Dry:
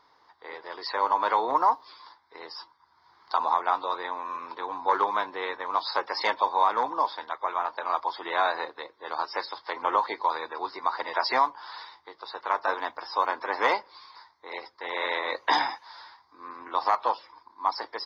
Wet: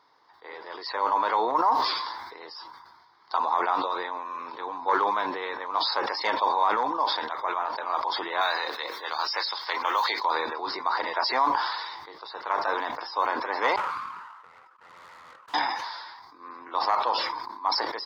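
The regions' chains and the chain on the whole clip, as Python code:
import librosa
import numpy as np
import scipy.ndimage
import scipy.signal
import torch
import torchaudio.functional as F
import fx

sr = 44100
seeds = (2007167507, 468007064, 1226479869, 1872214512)

y = fx.chain(x, sr, fx.highpass(hz=60.0, slope=12),
    fx.tilt_eq(slope=4.0),
    fx.band_squash(depth_pct=40), at=(8.41, 10.25))
y = fx.chain(y, sr, fx.halfwave_hold(),
    fx.bandpass_q(hz=1300.0, q=7.6),
    fx.tube_stage(drive_db=44.0, bias=0.45), at=(13.76, 15.54))
y = scipy.signal.sosfilt(scipy.signal.butter(2, 110.0, 'highpass', fs=sr, output='sos'), y)
y = fx.sustainer(y, sr, db_per_s=37.0)
y = y * 10.0 ** (-1.5 / 20.0)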